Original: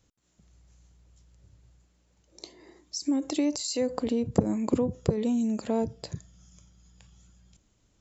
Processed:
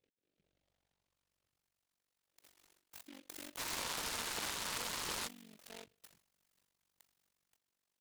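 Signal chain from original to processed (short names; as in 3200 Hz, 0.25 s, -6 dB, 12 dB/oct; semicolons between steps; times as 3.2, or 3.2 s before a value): band-pass sweep 450 Hz -> 2400 Hz, 0.37–1.73; AM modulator 47 Hz, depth 95%; painted sound noise, 3.57–5.28, 860–1800 Hz -41 dBFS; noise-modulated delay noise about 2600 Hz, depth 0.21 ms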